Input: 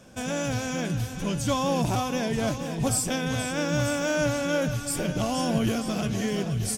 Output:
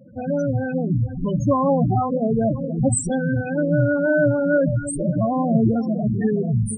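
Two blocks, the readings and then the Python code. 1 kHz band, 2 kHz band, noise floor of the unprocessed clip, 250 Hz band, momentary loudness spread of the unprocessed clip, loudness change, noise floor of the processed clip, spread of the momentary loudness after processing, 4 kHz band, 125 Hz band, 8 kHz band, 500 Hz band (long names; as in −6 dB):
+4.5 dB, +3.0 dB, −35 dBFS, +7.5 dB, 4 LU, +6.0 dB, −29 dBFS, 5 LU, below −20 dB, +7.5 dB, −0.5 dB, +7.5 dB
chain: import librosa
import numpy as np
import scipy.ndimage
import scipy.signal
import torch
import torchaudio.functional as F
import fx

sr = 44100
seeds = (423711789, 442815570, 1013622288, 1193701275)

y = fx.spec_topn(x, sr, count=8)
y = fx.hum_notches(y, sr, base_hz=50, count=5)
y = F.gain(torch.from_numpy(y), 8.5).numpy()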